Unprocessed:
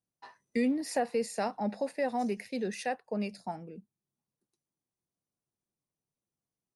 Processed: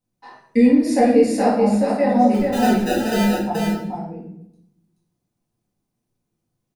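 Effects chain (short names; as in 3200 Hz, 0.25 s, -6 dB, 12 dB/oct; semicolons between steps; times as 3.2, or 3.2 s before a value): low shelf 420 Hz +8 dB; 2.34–3.42 sample-rate reducer 1100 Hz, jitter 0%; echo 0.429 s -4 dB; shoebox room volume 170 m³, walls mixed, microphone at 2 m; gain +1 dB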